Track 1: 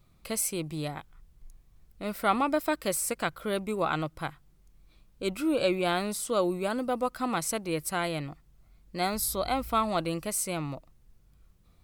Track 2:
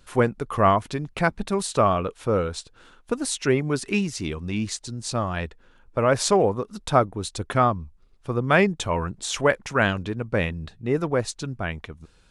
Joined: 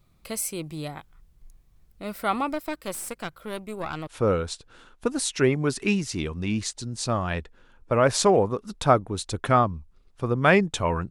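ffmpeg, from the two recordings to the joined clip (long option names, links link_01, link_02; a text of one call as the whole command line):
ffmpeg -i cue0.wav -i cue1.wav -filter_complex "[0:a]asettb=1/sr,asplit=3[link_01][link_02][link_03];[link_01]atrim=end=2.534[link_04];[link_02]atrim=start=2.53:end=4.07,asetpts=PTS-STARTPTS,afade=type=in:duration=0.004:curve=qsin,afade=type=out:start_time=1.536:duration=0.004:curve=qsin,aeval=exprs='(tanh(10*val(0)+0.75)-tanh(0.75))/10':channel_layout=same[link_05];[link_03]atrim=start=4.066[link_06];[link_04][link_05]acrossfade=duration=0.004:curve1=hsin:curve2=qsin[link_07];[link_07][link_06]acrossfade=duration=0.004:curve1=qsin:curve2=hsin,apad=whole_dur=11.1,atrim=end=11.1,atrim=end=4.072[link_08];[1:a]atrim=start=2.128:end=9.16[link_09];[link_08][link_09]acrossfade=duration=0.004:curve1=hsin:curve2=hsin" out.wav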